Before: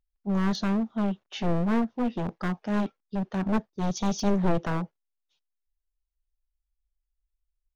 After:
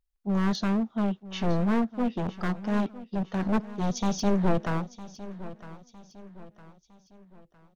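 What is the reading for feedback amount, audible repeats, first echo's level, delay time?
43%, 3, −16.0 dB, 958 ms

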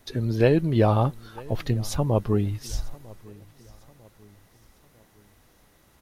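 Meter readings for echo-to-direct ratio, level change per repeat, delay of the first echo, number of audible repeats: −22.0 dB, −7.0 dB, 949 ms, 2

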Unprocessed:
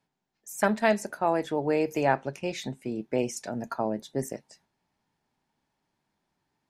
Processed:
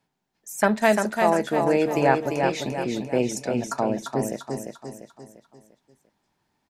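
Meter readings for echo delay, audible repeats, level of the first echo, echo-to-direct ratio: 346 ms, 5, −5.0 dB, −4.0 dB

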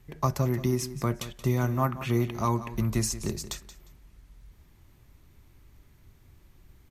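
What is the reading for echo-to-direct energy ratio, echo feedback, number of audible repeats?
−14.0 dB, 21%, 2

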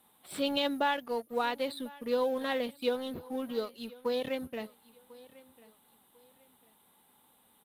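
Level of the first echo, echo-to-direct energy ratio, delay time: −21.5 dB, −21.0 dB, 1,046 ms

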